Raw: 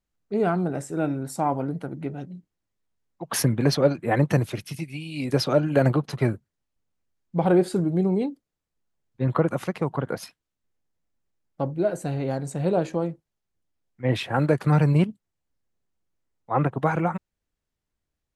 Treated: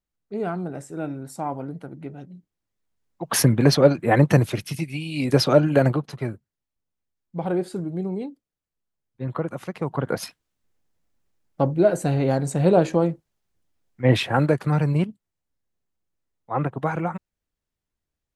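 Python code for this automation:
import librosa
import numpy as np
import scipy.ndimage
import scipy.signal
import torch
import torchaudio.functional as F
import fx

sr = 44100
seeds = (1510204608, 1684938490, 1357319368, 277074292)

y = fx.gain(x, sr, db=fx.line((2.22, -4.5), (3.32, 4.5), (5.65, 4.5), (6.2, -5.5), (9.61, -5.5), (10.23, 6.0), (14.18, 6.0), (14.7, -2.0)))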